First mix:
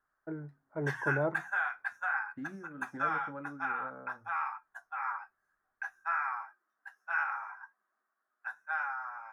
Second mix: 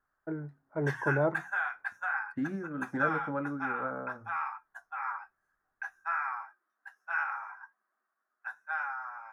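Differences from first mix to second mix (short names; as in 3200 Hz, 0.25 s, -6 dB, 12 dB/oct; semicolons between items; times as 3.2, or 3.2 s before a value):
first voice +3.5 dB; second voice +9.5 dB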